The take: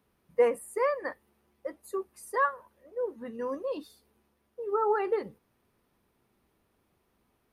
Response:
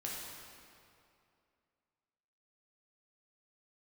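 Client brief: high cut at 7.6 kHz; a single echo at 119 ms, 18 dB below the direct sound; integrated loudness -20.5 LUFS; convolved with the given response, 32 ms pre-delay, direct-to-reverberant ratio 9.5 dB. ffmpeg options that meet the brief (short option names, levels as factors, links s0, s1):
-filter_complex "[0:a]lowpass=7600,aecho=1:1:119:0.126,asplit=2[s0][s1];[1:a]atrim=start_sample=2205,adelay=32[s2];[s1][s2]afir=irnorm=-1:irlink=0,volume=0.299[s3];[s0][s3]amix=inputs=2:normalize=0,volume=3.55"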